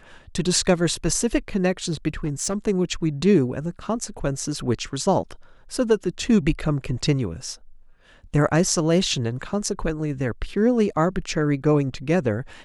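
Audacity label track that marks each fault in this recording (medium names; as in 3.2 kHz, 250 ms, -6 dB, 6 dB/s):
2.240000	2.540000	clipped -19.5 dBFS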